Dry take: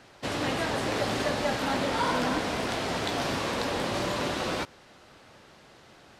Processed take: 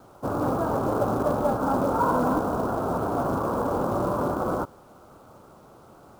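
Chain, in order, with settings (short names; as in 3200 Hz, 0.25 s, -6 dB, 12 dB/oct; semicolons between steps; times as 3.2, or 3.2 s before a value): steep low-pass 1400 Hz 72 dB/oct; companded quantiser 6-bit; gain +5 dB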